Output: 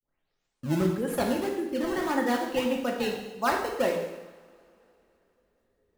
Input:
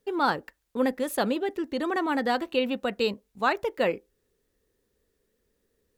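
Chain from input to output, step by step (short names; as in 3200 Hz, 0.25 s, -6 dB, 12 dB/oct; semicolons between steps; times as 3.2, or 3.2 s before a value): tape start at the beginning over 1.16 s; spectral gate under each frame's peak -25 dB strong; in parallel at -4 dB: decimation with a swept rate 21×, swing 160% 1.7 Hz; on the sum: two-slope reverb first 0.99 s, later 3.4 s, from -22 dB, DRR 0 dB; gain -6.5 dB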